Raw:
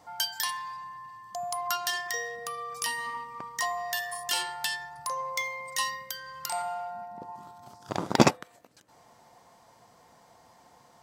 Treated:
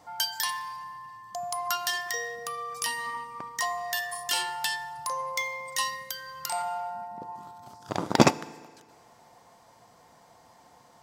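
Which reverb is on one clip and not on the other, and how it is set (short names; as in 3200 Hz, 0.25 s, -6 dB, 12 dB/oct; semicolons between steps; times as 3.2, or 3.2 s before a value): FDN reverb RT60 1.7 s, low-frequency decay 0.75×, high-frequency decay 0.85×, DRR 17.5 dB; gain +1 dB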